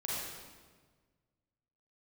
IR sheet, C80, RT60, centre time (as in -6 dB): -0.5 dB, 1.5 s, 111 ms